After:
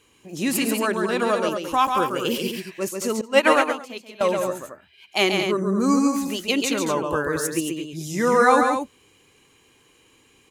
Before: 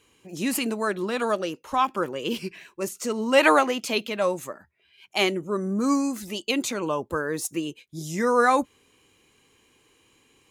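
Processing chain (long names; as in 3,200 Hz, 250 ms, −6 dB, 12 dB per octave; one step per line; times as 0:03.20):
0:01.51–0:02.48: high-shelf EQ 8,000 Hz +11 dB
loudspeakers that aren't time-aligned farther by 47 metres −5 dB, 77 metres −8 dB
0:03.21–0:04.21: expander for the loud parts 2.5 to 1, over −26 dBFS
level +2.5 dB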